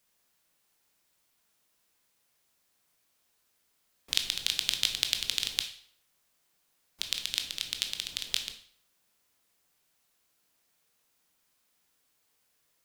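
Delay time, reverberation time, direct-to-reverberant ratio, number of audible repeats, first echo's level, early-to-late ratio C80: none, 0.60 s, 5.0 dB, none, none, 13.5 dB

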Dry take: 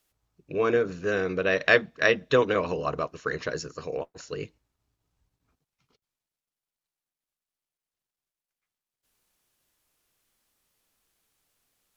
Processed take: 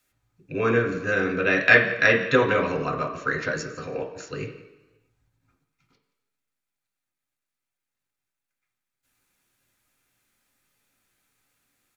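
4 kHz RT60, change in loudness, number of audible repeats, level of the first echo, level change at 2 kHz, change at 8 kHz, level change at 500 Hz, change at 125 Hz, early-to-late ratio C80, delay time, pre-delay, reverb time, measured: 1.1 s, +4.0 dB, 1, -18.5 dB, +6.5 dB, n/a, +1.0 dB, +5.5 dB, 10.5 dB, 0.174 s, 3 ms, 1.1 s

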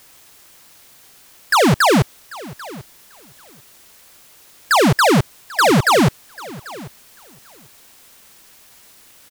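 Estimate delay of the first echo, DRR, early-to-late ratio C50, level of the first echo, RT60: 0.791 s, none, none, -20.0 dB, none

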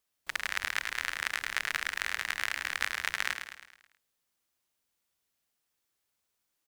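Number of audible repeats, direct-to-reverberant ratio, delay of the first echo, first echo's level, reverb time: 5, none, 0.107 s, -7.5 dB, none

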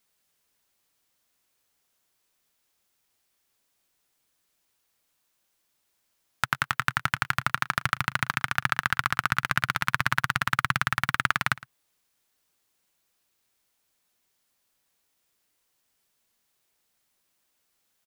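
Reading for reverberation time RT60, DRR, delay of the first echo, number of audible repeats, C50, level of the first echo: none, none, 0.112 s, 1, none, -20.0 dB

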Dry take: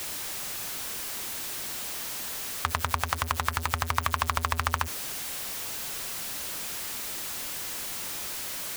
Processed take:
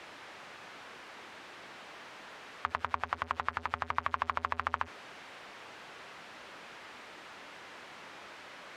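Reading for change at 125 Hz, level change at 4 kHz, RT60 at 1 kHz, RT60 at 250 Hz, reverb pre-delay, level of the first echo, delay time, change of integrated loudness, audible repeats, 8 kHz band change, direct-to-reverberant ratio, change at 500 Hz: -16.5 dB, -14.0 dB, none, none, none, none, none, -9.0 dB, none, under -25 dB, none, -5.0 dB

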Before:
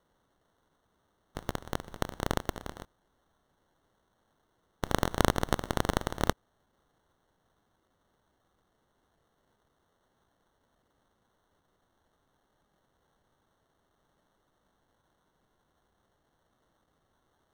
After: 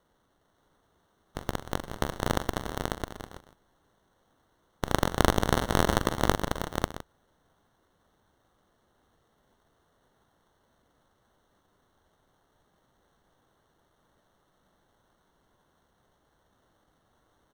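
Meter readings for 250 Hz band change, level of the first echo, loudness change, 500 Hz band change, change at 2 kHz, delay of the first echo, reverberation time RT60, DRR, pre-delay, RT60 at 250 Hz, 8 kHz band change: +4.5 dB, -11.0 dB, +3.0 dB, +4.5 dB, +4.5 dB, 43 ms, none, none, none, none, +4.5 dB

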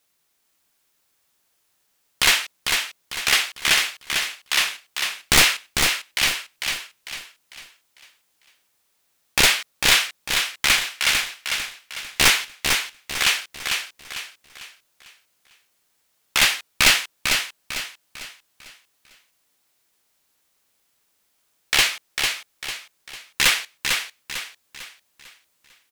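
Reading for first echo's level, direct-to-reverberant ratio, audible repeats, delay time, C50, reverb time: -5.0 dB, none, 4, 0.449 s, none, none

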